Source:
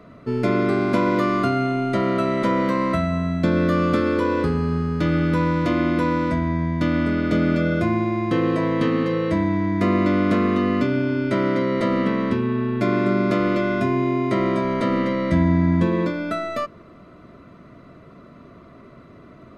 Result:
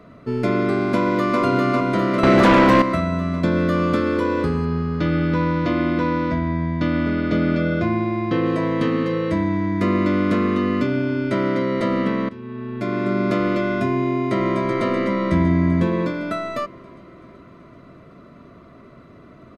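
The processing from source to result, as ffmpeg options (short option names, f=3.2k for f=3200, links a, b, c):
-filter_complex "[0:a]asplit=2[a][b];[b]afade=t=in:st=0.93:d=0.01,afade=t=out:st=1.4:d=0.01,aecho=0:1:400|800|1200|1600|2000|2400|2800|3200|3600|4000|4400|4800:0.794328|0.55603|0.389221|0.272455|0.190718|0.133503|0.0934519|0.0654163|0.0457914|0.032054|0.0224378|0.0157065[c];[a][c]amix=inputs=2:normalize=0,asettb=1/sr,asplit=3[d][e][f];[d]atrim=end=2.234[g];[e]atrim=start=2.23:end=2.82,asetpts=PTS-STARTPTS,afade=t=in:d=0.004:c=qsin,afade=t=out:st=0.586:d=0.004:c=qsin,aeval=exprs='0.355*sin(PI/2*2.24*val(0)/0.355)':c=same[h];[f]atrim=start=2.816[i];[g][h]acrossfade=d=0.004:c1=hsin:c2=qsin[j];[j][i]acrossfade=d=0.004:c1=qsin:c2=hsin,asettb=1/sr,asplit=3[k][l][m];[k]atrim=end=4.654[n];[l]atrim=start=4.65:end=8.46,asetpts=PTS-STARTPTS,afade=t=in:d=0.004:c=qsin,afade=t=out:st=3.806:d=0.004:c=qsin,lowpass=f=5.6k:w=0.5412,lowpass=f=5.6k:w=1.3066[o];[m]atrim=start=8.456[p];[n][o]acrossfade=d=0.004:c1=hsin:c2=qsin[q];[q][p]acrossfade=d=0.004:c1=qsin:c2=hsin,asettb=1/sr,asplit=3[r][s][t];[r]atrim=end=8.964[u];[s]atrim=start=8.96:end=10.87,asetpts=PTS-STARTPTS,afade=t=in:d=0.004:c=qsin,afade=t=out:st=1.906:d=0.004:c=qsin,asuperstop=centerf=740:order=4:qfactor=5.7[v];[t]atrim=start=10.866[w];[u][v]acrossfade=d=0.004:c1=hsin:c2=qsin[x];[x][w]acrossfade=d=0.004:c1=qsin:c2=hsin,asplit=2[y][z];[z]afade=t=in:st=14.03:d=0.01,afade=t=out:st=14.69:d=0.01,aecho=0:1:380|760|1140|1520|1900|2280|2660|3040|3420|3800:0.562341|0.365522|0.237589|0.154433|0.100381|0.0652479|0.0424112|0.0275673|0.0179187|0.0116472[aa];[y][aa]amix=inputs=2:normalize=0,asplit=2[ab][ac];[ab]atrim=end=12.29,asetpts=PTS-STARTPTS,afade=t=out:st=12.286:d=0.004:c=hsin:silence=0.11885[ad];[ac]atrim=start=12.29,asetpts=PTS-STARTPTS,afade=t=in:d=0.99:silence=0.11885[ae];[ad][ae]concat=n=2:v=0:a=1"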